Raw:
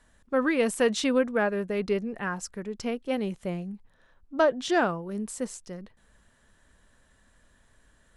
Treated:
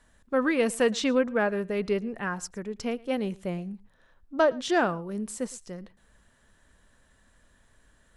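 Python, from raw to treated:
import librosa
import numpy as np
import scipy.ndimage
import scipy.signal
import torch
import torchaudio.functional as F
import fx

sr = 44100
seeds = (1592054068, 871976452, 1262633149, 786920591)

y = fx.peak_eq(x, sr, hz=10000.0, db=-13.0, octaves=0.36, at=(0.82, 1.4))
y = y + 10.0 ** (-23.5 / 20.0) * np.pad(y, (int(112 * sr / 1000.0), 0))[:len(y)]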